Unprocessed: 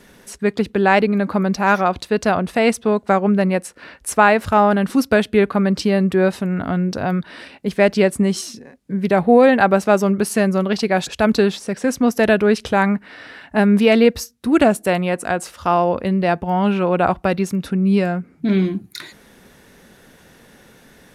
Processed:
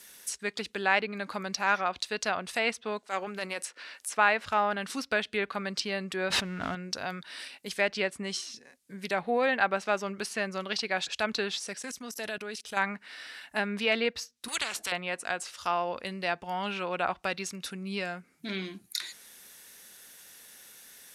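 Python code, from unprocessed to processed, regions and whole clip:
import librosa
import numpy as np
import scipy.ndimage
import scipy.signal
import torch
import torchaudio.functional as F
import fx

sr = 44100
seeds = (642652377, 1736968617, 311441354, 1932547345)

y = fx.chain(x, sr, fx.highpass(hz=270.0, slope=12),
    fx.transient(attack_db=-11, sustain_db=5), at=(3.03, 4.17))
y = fx.chain(y, sr, fx.zero_step(step_db=-33.5),
    fx.low_shelf(hz=200.0, db=8.5),
    fx.pre_swell(db_per_s=26.0), at=(6.3, 6.75))
y = fx.chain(y, sr, fx.comb(ms=4.8, depth=0.42),
    fx.level_steps(step_db=21), at=(11.76, 12.77))
y = fx.chain(y, sr, fx.peak_eq(hz=2000.0, db=-4.5, octaves=3.0),
    fx.spectral_comp(ratio=4.0), at=(14.48, 14.92))
y = librosa.effects.preemphasis(y, coef=0.9, zi=[0.0])
y = fx.env_lowpass_down(y, sr, base_hz=2900.0, full_db=-28.0)
y = fx.low_shelf(y, sr, hz=330.0, db=-10.0)
y = y * 10.0 ** (5.5 / 20.0)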